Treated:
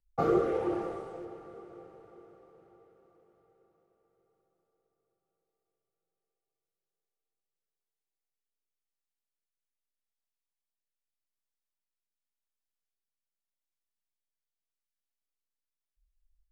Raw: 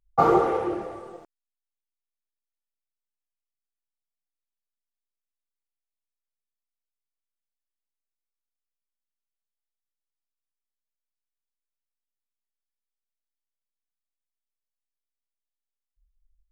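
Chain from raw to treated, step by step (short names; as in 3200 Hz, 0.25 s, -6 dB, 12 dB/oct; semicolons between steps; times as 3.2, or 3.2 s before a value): rotary speaker horn 0.85 Hz; diffused feedback echo 0.575 s, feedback 48%, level -14.5 dB; gain -3 dB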